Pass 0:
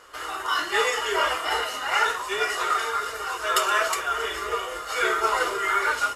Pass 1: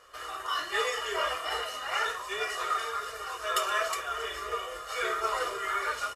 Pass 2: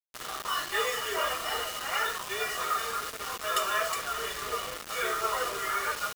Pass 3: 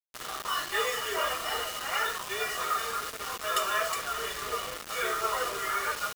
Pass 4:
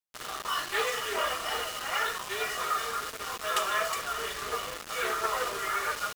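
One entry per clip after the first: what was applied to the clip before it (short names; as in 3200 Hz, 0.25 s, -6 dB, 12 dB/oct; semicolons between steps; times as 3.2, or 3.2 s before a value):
comb 1.7 ms, depth 41%; gain -7.5 dB
bit-crush 6-bit
nothing audible
Doppler distortion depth 0.16 ms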